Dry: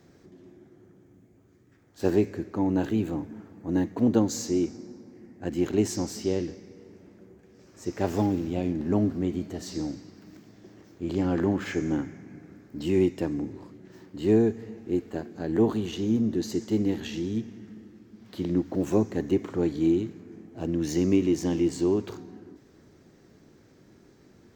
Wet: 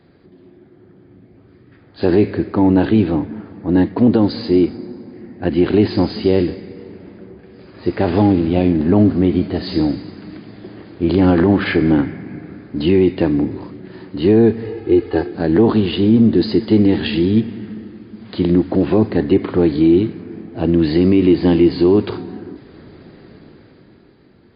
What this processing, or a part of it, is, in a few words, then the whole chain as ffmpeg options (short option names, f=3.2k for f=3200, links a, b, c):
low-bitrate web radio: -filter_complex "[0:a]asettb=1/sr,asplit=3[a][b][c];[a]atrim=end=14.644[d];[b]atrim=start=14.64:end=15.35,asetpts=PTS-STARTPTS,afade=t=in:d=0.004:c=qsin,afade=t=out:st=0.706:d=0.004:c=qsin,aecho=1:1:2.4:0.82,atrim=end_sample=31311[e];[c]atrim=start=15.346[f];[d][e]acrossfade=d=0.004:c1=hsin:c2=qsin[g];[g][f]acrossfade=d=0.004:c1=qsin:c2=hsin,dynaudnorm=f=130:g=17:m=11dB,alimiter=limit=-9dB:level=0:latency=1:release=37,volume=5.5dB" -ar 11025 -c:a libmp3lame -b:a 32k